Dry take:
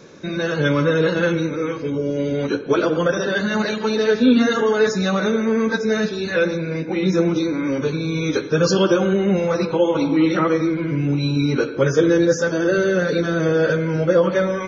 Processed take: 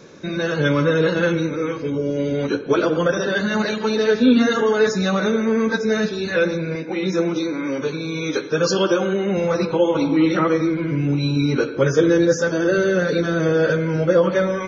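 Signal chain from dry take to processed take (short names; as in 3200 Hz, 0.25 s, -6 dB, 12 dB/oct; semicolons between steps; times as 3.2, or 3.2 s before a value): 6.75–9.37 HPF 280 Hz 6 dB/oct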